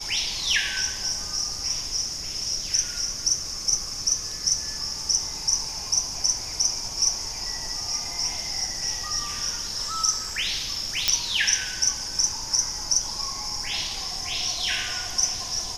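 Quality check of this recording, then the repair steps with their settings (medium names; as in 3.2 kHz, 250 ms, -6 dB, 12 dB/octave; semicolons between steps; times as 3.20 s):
11.08 s: pop -4 dBFS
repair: de-click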